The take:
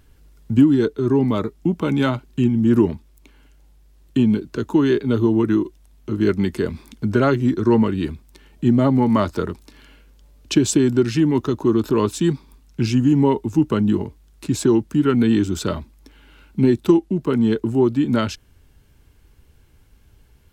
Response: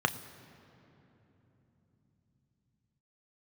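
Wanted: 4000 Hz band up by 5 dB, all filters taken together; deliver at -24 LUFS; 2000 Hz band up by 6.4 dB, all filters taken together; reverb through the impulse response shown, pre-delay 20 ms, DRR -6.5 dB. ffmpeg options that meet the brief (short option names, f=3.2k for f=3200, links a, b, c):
-filter_complex "[0:a]equalizer=f=2k:t=o:g=8,equalizer=f=4k:t=o:g=3.5,asplit=2[a][b];[1:a]atrim=start_sample=2205,adelay=20[c];[b][c]afir=irnorm=-1:irlink=0,volume=-3.5dB[d];[a][d]amix=inputs=2:normalize=0,volume=-12.5dB"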